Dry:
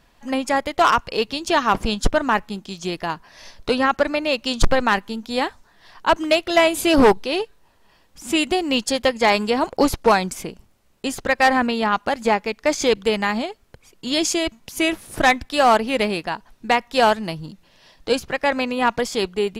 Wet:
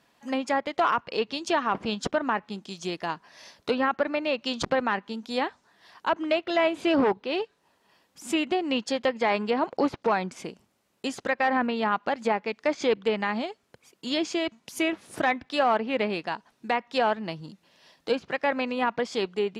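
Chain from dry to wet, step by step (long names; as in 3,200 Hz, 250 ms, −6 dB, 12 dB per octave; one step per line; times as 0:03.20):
high-pass filter 160 Hz 12 dB per octave
treble cut that deepens with the level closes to 2,600 Hz, closed at −16 dBFS
brickwall limiter −9.5 dBFS, peak gain reduction 6 dB
level −5 dB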